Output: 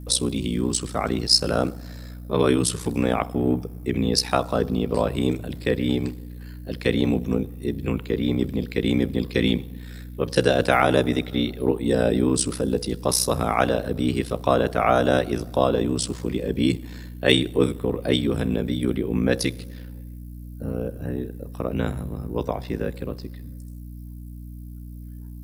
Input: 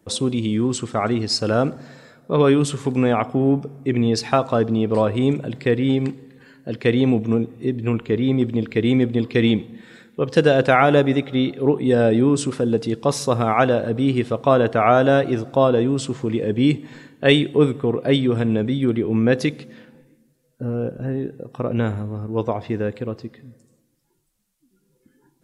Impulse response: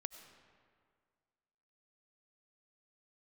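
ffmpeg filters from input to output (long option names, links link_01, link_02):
-filter_complex "[0:a]aemphasis=mode=production:type=50fm,acrossover=split=170|950|2500[link_01][link_02][link_03][link_04];[link_04]aexciter=amount=1.7:drive=2.6:freq=4100[link_05];[link_01][link_02][link_03][link_05]amix=inputs=4:normalize=0,aeval=exprs='val(0)*sin(2*PI*31*n/s)':channel_layout=same,aeval=exprs='val(0)+0.0178*(sin(2*PI*60*n/s)+sin(2*PI*2*60*n/s)/2+sin(2*PI*3*60*n/s)/3+sin(2*PI*4*60*n/s)/4+sin(2*PI*5*60*n/s)/5)':channel_layout=same,volume=-1dB"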